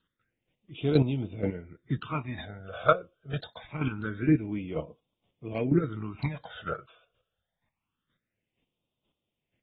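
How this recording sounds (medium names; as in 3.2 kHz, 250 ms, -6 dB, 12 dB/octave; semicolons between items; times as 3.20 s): phasing stages 8, 0.25 Hz, lowest notch 250–1700 Hz; chopped level 2.1 Hz, depth 65%, duty 15%; AAC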